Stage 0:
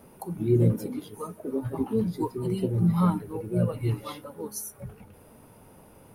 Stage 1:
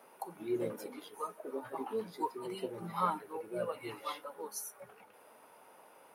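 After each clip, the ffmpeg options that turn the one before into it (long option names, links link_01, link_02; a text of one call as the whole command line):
ffmpeg -i in.wav -af "highpass=710,highshelf=frequency=4000:gain=-9,volume=1.5dB" out.wav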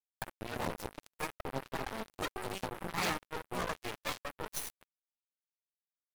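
ffmpeg -i in.wav -af "aeval=exprs='0.119*(cos(1*acos(clip(val(0)/0.119,-1,1)))-cos(1*PI/2))+0.0237*(cos(8*acos(clip(val(0)/0.119,-1,1)))-cos(8*PI/2))':channel_layout=same,afftfilt=real='re*lt(hypot(re,im),0.112)':imag='im*lt(hypot(re,im),0.112)':win_size=1024:overlap=0.75,acrusher=bits=5:mix=0:aa=0.5,volume=2dB" out.wav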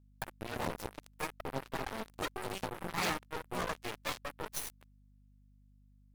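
ffmpeg -i in.wav -af "aeval=exprs='val(0)+0.000794*(sin(2*PI*50*n/s)+sin(2*PI*2*50*n/s)/2+sin(2*PI*3*50*n/s)/3+sin(2*PI*4*50*n/s)/4+sin(2*PI*5*50*n/s)/5)':channel_layout=same" out.wav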